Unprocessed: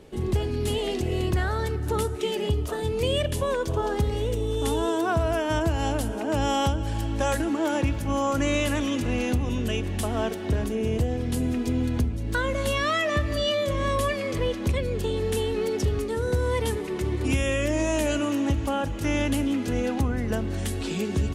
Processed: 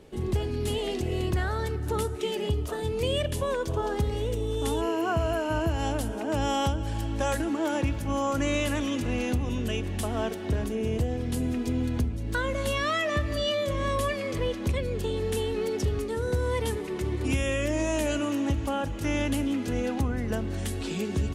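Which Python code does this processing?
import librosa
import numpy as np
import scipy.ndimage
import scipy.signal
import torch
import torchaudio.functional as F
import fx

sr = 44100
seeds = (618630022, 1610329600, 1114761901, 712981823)

y = fx.spec_repair(x, sr, seeds[0], start_s=4.83, length_s=0.85, low_hz=1800.0, high_hz=9400.0, source='after')
y = y * 10.0 ** (-2.5 / 20.0)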